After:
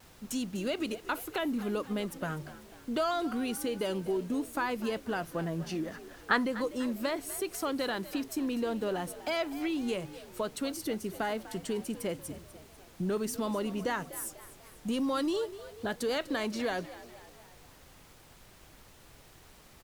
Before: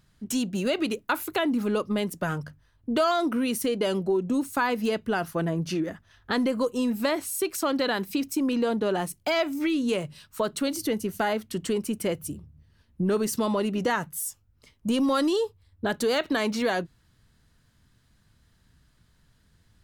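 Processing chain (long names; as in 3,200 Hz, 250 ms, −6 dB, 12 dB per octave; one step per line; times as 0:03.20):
0:05.92–0:06.45: parametric band 1,400 Hz +13 dB 1.6 octaves
background noise pink −49 dBFS
pitch vibrato 0.45 Hz 13 cents
echo with shifted repeats 247 ms, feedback 51%, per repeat +61 Hz, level −16 dB
level −7 dB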